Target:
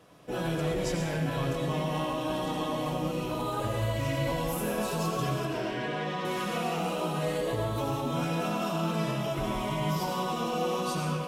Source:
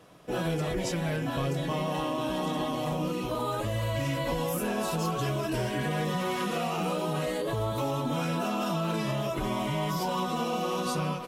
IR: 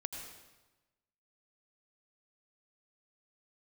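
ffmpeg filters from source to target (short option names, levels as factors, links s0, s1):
-filter_complex "[0:a]asettb=1/sr,asplit=3[s0][s1][s2];[s0]atrim=end=5.454[s3];[s1]atrim=start=5.45:end=6.25,asetpts=PTS-STARTPTS,afade=t=in:d=0.004:c=qsin,afade=t=out:st=0.796:d=0.004:c=qsin,acrossover=split=210 5600:gain=0.2 1 0.0891[s4][s5][s6];[s4][s5][s6]amix=inputs=3:normalize=0[s7];[s2]atrim=start=6.246[s8];[s3][s7]acrossfade=d=0.004:c1=hsin:c2=qsin[s9];[s9][s8]acrossfade=d=0.004:c1=qsin:c2=hsin[s10];[1:a]atrim=start_sample=2205[s11];[s10][s11]afir=irnorm=-1:irlink=0"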